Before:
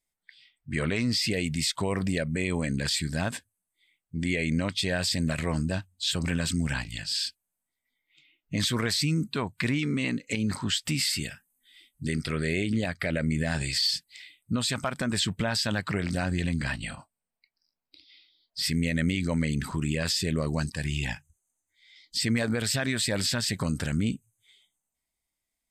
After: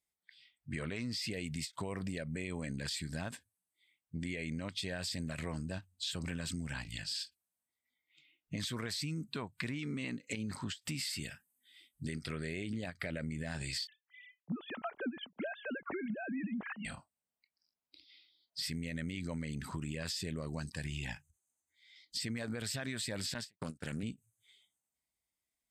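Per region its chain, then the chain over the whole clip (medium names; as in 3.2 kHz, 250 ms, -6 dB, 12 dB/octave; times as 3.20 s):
13.87–16.85 s: formants replaced by sine waves + treble shelf 2.4 kHz -7 dB
23.34–24.03 s: gate -32 dBFS, range -54 dB + high-pass 160 Hz 6 dB/octave + loudspeaker Doppler distortion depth 0.21 ms
whole clip: high-pass 46 Hz; compression, threshold -30 dBFS; endings held to a fixed fall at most 370 dB/s; trim -5.5 dB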